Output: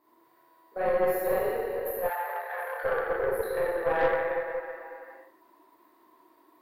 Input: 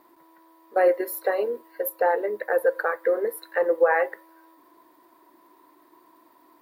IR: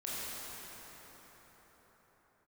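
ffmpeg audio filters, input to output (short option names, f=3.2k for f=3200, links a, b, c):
-filter_complex "[1:a]atrim=start_sample=2205,asetrate=83790,aresample=44100[a];[0:a][a]afir=irnorm=-1:irlink=0,aeval=exprs='(tanh(6.31*val(0)+0.5)-tanh(0.5))/6.31':c=same,asplit=3[b][c][d];[b]afade=t=out:st=2.08:d=0.02[e];[c]highpass=f=730:w=0.5412,highpass=f=730:w=1.3066,afade=t=in:st=2.08:d=0.02,afade=t=out:st=2.83:d=0.02[f];[d]afade=t=in:st=2.83:d=0.02[g];[e][f][g]amix=inputs=3:normalize=0"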